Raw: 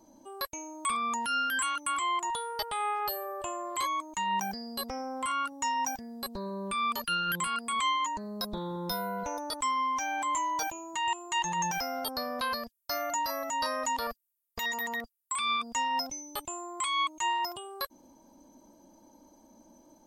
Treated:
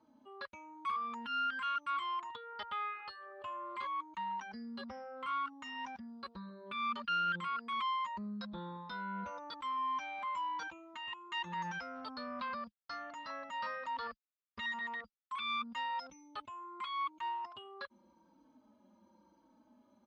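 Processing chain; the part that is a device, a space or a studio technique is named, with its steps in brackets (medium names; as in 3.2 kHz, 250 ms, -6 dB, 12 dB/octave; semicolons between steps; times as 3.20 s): barber-pole flanger into a guitar amplifier (endless flanger 4.1 ms -0.92 Hz; saturation -29 dBFS, distortion -16 dB; cabinet simulation 89–3800 Hz, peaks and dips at 140 Hz -9 dB, 210 Hz +5 dB, 300 Hz -6 dB, 440 Hz -5 dB, 710 Hz -10 dB, 1.3 kHz +7 dB); trim -3 dB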